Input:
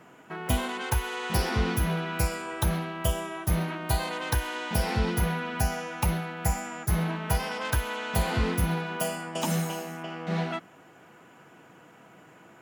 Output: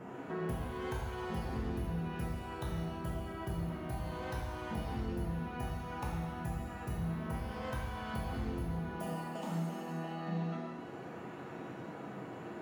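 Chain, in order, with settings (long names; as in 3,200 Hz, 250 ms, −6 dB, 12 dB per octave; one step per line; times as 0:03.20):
tilt shelving filter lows +8 dB, about 1,300 Hz
downward compressor 6 to 1, threshold −40 dBFS, peak gain reduction 25 dB
reverb with rising layers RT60 1.1 s, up +7 semitones, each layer −8 dB, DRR −3 dB
level −1.5 dB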